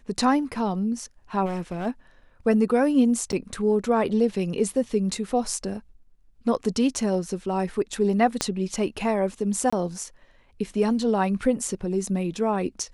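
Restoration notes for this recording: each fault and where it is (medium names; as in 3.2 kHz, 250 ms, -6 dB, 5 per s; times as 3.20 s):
1.45–1.87 s: clipped -25.5 dBFS
3.32–3.33 s: dropout 8.4 ms
8.41 s: pop -8 dBFS
9.70–9.72 s: dropout 25 ms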